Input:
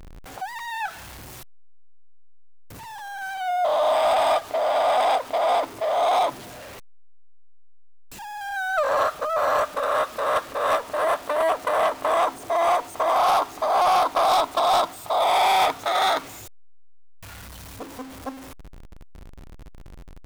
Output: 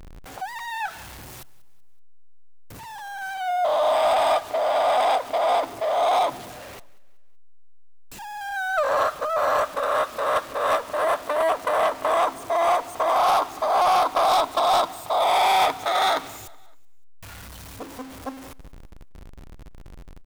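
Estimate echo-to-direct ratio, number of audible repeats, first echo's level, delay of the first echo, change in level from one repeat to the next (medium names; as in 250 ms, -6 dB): -21.0 dB, 2, -22.0 dB, 188 ms, -7.0 dB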